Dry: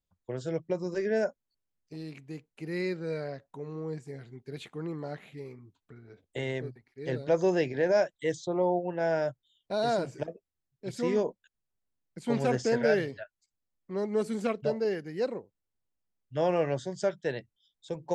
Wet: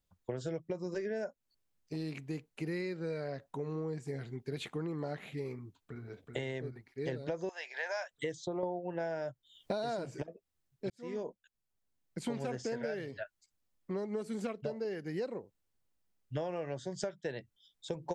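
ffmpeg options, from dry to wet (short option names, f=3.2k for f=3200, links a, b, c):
-filter_complex "[0:a]asplit=2[a][b];[b]afade=t=in:st=5.57:d=0.01,afade=t=out:st=6.02:d=0.01,aecho=0:1:380|760|1140|1520|1900|2280|2660:0.595662|0.327614|0.180188|0.0991033|0.0545068|0.0299787|0.0164883[c];[a][c]amix=inputs=2:normalize=0,asettb=1/sr,asplit=3[d][e][f];[d]atrim=end=7.494[g];[e]atrim=start=7.49:end=8.11,asetpts=PTS-STARTPTS,afade=t=in:d=0.004:c=qsin,afade=t=out:st=0.616:d=0.004:c=qsin,highpass=f=830:w=0.5412,highpass=f=830:w=1.3066[h];[f]atrim=start=8.106[i];[g][h]acrossfade=d=0.004:c1=hsin:c2=qsin[j];[j][i]acrossfade=d=0.004:c1=qsin:c2=hsin,asplit=4[k][l][m][n];[k]atrim=end=8.632[o];[l]atrim=start=8.628:end=10.222,asetpts=PTS-STARTPTS,volume=11.5dB[p];[m]atrim=start=10.218:end=10.9,asetpts=PTS-STARTPTS,afade=t=out:st=0.678:d=0.004:c=hsin[q];[n]atrim=start=10.9,asetpts=PTS-STARTPTS,afade=t=in:d=1.4[r];[o][p]acrossfade=d=0.004:c1=hsin:c2=hsin[s];[q][r]concat=n=2:v=0:a=1[t];[s][t]acrossfade=d=0.004:c1=hsin:c2=hsin,acompressor=threshold=-38dB:ratio=16,volume=4.5dB"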